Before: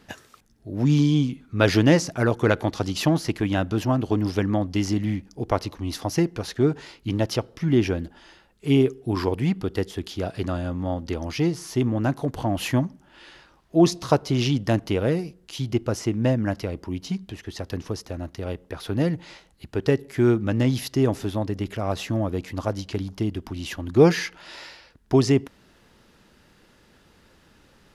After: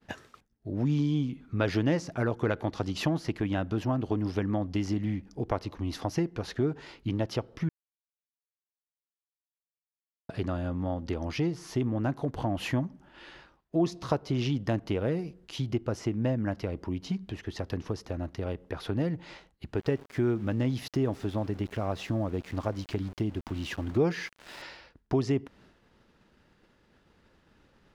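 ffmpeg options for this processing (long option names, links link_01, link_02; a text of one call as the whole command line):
ffmpeg -i in.wav -filter_complex "[0:a]asettb=1/sr,asplit=3[link_01][link_02][link_03];[link_01]atrim=end=19.774[link_04];[link_02]atrim=start=19.77:end=24.62,asetpts=PTS-STARTPTS,afade=type=in:duration=0.004:curve=qsin,afade=type=out:start_time=4.846:duration=0.004:curve=qsin,aeval=exprs='val(0)*gte(abs(val(0)),0.01)':channel_layout=same[link_05];[link_03]atrim=start=24.616[link_06];[link_04][link_05]acrossfade=duration=0.004:curve1=hsin:curve2=qsin[link_07];[link_07][link_06]acrossfade=duration=0.004:curve1=qsin:curve2=hsin,asplit=3[link_08][link_09][link_10];[link_08]atrim=end=7.69,asetpts=PTS-STARTPTS,afade=type=out:start_time=7.686:duration=0.004:curve=hsin[link_11];[link_09]atrim=start=7.69:end=10.29,asetpts=PTS-STARTPTS,volume=0[link_12];[link_10]atrim=start=10.29,asetpts=PTS-STARTPTS,afade=type=in:duration=0.004:curve=hsin[link_13];[link_11][link_12][link_13]concat=n=3:v=0:a=1,agate=range=-33dB:threshold=-50dB:ratio=3:detection=peak,lowpass=frequency=2900:poles=1,acompressor=threshold=-30dB:ratio=2" out.wav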